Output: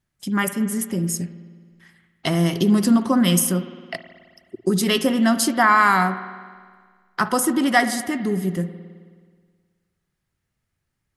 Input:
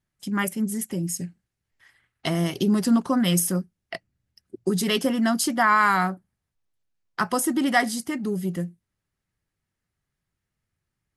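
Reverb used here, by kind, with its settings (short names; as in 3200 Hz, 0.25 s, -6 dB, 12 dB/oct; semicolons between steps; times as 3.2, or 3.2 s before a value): spring tank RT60 1.7 s, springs 53 ms, chirp 25 ms, DRR 11 dB; gain +3.5 dB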